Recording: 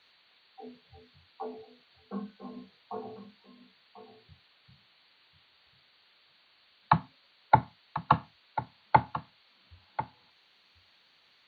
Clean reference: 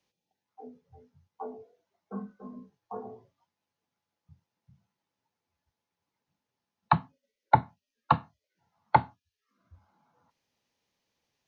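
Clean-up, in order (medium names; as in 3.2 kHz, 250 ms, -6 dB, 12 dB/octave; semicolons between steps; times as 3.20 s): noise print and reduce 23 dB; inverse comb 1042 ms -12.5 dB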